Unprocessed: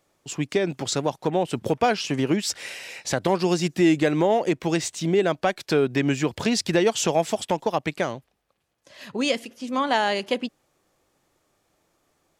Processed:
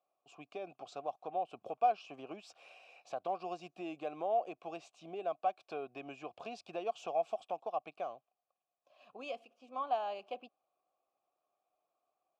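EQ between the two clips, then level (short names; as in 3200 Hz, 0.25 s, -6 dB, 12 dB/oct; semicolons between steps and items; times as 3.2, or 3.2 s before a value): vowel filter a; bell 2000 Hz -5 dB 0.86 oct; -5.0 dB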